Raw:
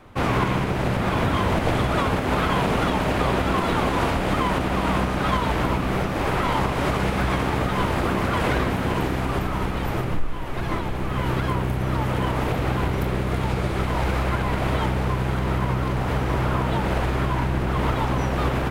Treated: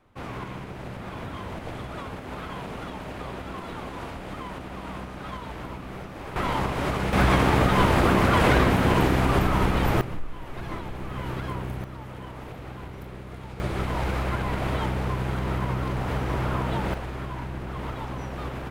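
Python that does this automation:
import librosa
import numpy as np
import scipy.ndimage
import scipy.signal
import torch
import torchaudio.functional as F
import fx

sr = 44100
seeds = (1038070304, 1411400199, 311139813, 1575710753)

y = fx.gain(x, sr, db=fx.steps((0.0, -14.0), (6.36, -4.0), (7.13, 3.0), (10.01, -8.0), (11.84, -15.5), (13.6, -4.0), (16.94, -10.5)))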